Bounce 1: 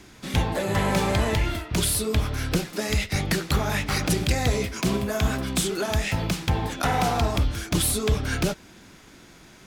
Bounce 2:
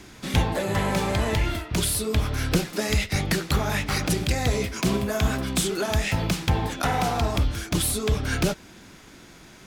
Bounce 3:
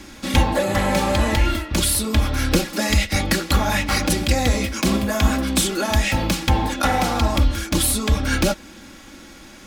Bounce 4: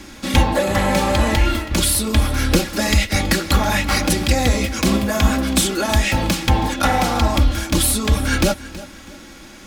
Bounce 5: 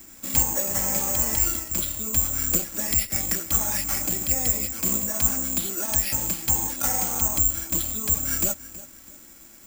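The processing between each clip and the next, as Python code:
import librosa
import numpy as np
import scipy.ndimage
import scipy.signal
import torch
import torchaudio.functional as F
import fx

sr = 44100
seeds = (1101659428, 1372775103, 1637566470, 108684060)

y1 = fx.rider(x, sr, range_db=10, speed_s=0.5)
y2 = y1 + 0.68 * np.pad(y1, (int(3.6 * sr / 1000.0), 0))[:len(y1)]
y2 = y2 * librosa.db_to_amplitude(4.0)
y3 = fx.echo_feedback(y2, sr, ms=324, feedback_pct=28, wet_db=-17.5)
y3 = y3 * librosa.db_to_amplitude(2.0)
y4 = (np.kron(scipy.signal.resample_poly(y3, 1, 6), np.eye(6)[0]) * 6)[:len(y3)]
y4 = y4 * librosa.db_to_amplitude(-15.0)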